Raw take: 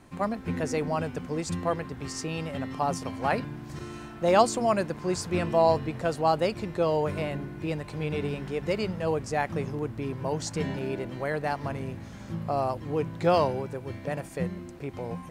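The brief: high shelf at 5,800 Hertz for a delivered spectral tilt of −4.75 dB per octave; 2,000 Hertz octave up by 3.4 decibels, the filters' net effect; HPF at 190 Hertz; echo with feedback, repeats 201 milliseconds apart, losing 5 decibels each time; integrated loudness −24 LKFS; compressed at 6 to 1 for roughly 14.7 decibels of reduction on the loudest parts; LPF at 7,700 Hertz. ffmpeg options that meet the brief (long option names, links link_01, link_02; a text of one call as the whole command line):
ffmpeg -i in.wav -af "highpass=190,lowpass=7700,equalizer=frequency=2000:width_type=o:gain=5,highshelf=frequency=5800:gain=-6,acompressor=threshold=-30dB:ratio=6,aecho=1:1:201|402|603|804|1005|1206|1407:0.562|0.315|0.176|0.0988|0.0553|0.031|0.0173,volume=10.5dB" out.wav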